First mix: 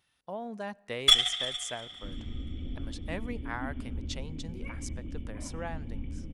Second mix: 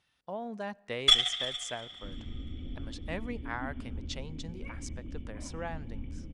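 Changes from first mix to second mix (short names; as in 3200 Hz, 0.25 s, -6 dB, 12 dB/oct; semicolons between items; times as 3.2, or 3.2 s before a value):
first sound: send off; second sound: send off; master: add LPF 7700 Hz 12 dB/oct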